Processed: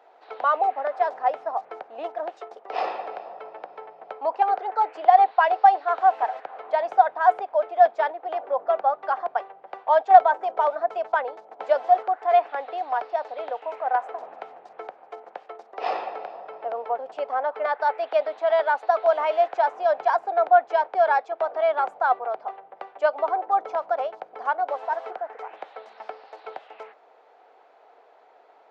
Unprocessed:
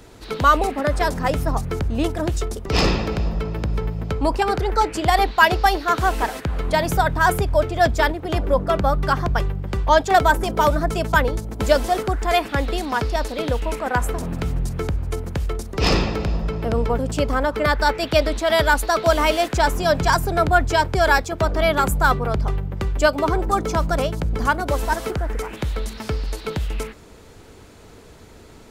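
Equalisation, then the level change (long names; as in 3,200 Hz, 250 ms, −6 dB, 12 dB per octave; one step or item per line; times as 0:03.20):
high-pass filter 550 Hz 24 dB per octave
head-to-tape spacing loss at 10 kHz 44 dB
parametric band 750 Hz +11.5 dB 0.36 octaves
−2.5 dB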